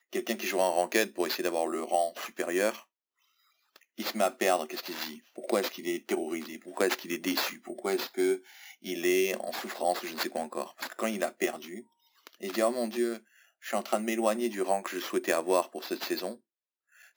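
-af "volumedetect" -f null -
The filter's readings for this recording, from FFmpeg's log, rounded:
mean_volume: -31.8 dB
max_volume: -10.6 dB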